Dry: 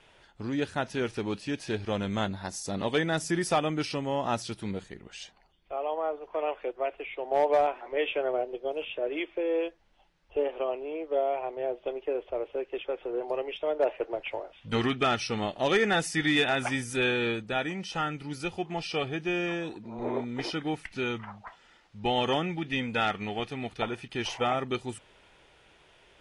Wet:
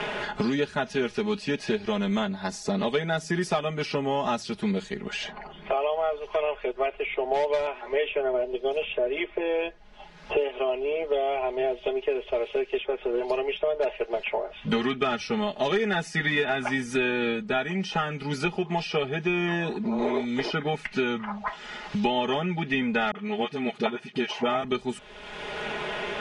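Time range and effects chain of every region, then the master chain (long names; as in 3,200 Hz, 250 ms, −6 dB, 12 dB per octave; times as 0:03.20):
0:23.11–0:24.64: high-pass filter 140 Hz 24 dB per octave + all-pass dispersion highs, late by 42 ms, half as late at 410 Hz + expander for the loud parts, over −38 dBFS
whole clip: Bessel low-pass filter 5,400 Hz, order 2; comb filter 4.8 ms, depth 90%; multiband upward and downward compressor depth 100%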